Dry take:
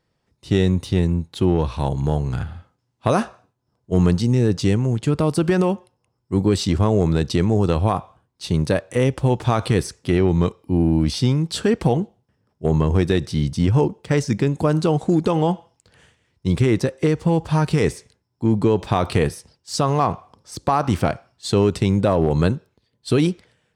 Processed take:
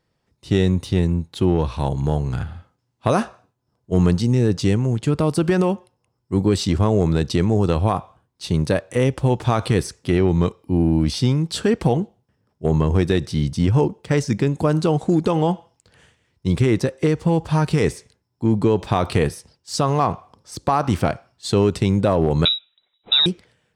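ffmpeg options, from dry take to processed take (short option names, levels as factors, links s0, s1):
-filter_complex "[0:a]asettb=1/sr,asplit=3[s0][s1][s2];[s0]atrim=end=22.454[s3];[s1]atrim=start=22.45:end=23.26,asetpts=PTS-STARTPTS,afade=t=in:d=0.004:c=qsin,afade=t=out:st=0.806:d=0.004:c=qsin,lowpass=f=3400:t=q:w=0.5098,lowpass=f=3400:t=q:w=0.6013,lowpass=f=3400:t=q:w=0.9,lowpass=f=3400:t=q:w=2.563,afreqshift=-4000[s4];[s2]atrim=start=23.256[s5];[s3][s4]acrossfade=d=0.004:c1=hsin:c2=qsin[s6];[s6][s5]acrossfade=d=0.004:c1=qsin:c2=hsin"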